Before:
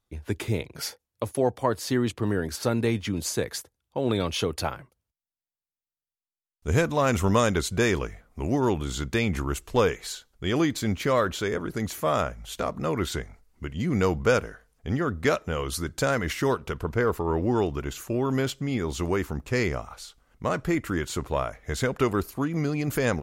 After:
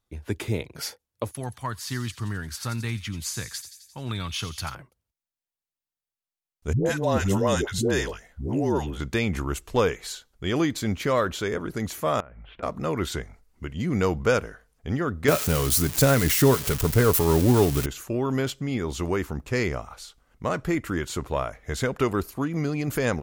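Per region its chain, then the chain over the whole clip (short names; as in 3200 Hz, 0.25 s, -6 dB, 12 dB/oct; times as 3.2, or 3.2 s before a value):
1.31–4.75 EQ curve 130 Hz 0 dB, 500 Hz -18 dB, 1200 Hz -1 dB + thin delay 87 ms, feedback 63%, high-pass 4000 Hz, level -8 dB
6.73–9 bell 1200 Hz -7.5 dB 0.35 oct + notch 2300 Hz, Q 7.1 + dispersion highs, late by 0.128 s, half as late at 490 Hz
12.2–12.63 steep low-pass 2700 Hz + compressor 10:1, threshold -40 dBFS
15.28–17.86 switching spikes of -17 dBFS + low shelf 330 Hz +9.5 dB + comb 7.1 ms, depth 31%
whole clip: dry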